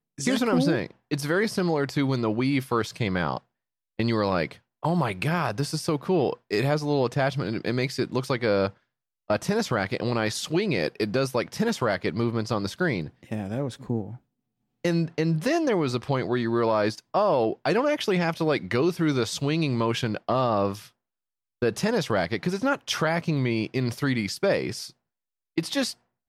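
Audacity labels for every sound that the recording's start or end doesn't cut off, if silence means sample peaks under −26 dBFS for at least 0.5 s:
4.000000	8.680000	sound
9.300000	14.020000	sound
14.850000	20.730000	sound
21.620000	24.830000	sound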